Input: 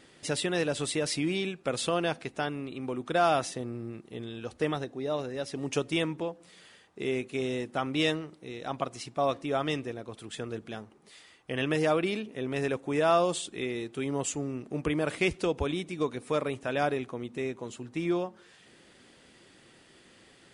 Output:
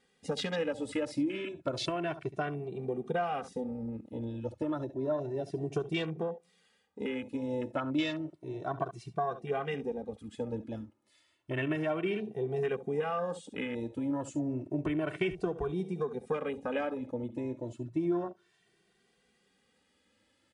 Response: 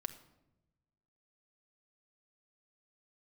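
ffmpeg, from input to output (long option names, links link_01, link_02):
-filter_complex "[0:a]aecho=1:1:10|69:0.158|0.188,afwtdn=0.0158,acompressor=threshold=-31dB:ratio=6,asplit=2[link_01][link_02];[link_02]adelay=2.1,afreqshift=0.31[link_03];[link_01][link_03]amix=inputs=2:normalize=1,volume=5dB"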